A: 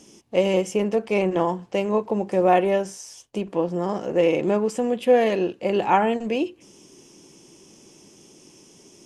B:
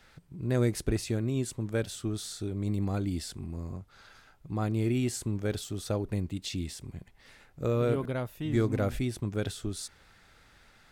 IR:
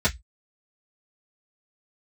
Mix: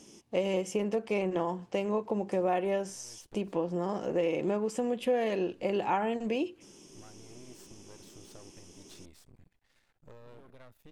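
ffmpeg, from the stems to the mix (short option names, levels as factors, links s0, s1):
-filter_complex "[0:a]volume=0.631,asplit=2[s0][s1];[1:a]acompressor=threshold=0.0224:ratio=6,aeval=exprs='max(val(0),0)':c=same,adelay=2450,volume=0.266[s2];[s1]apad=whole_len=589610[s3];[s2][s3]sidechaincompress=threshold=0.00631:ratio=8:attack=16:release=174[s4];[s0][s4]amix=inputs=2:normalize=0,acompressor=threshold=0.0398:ratio=2.5"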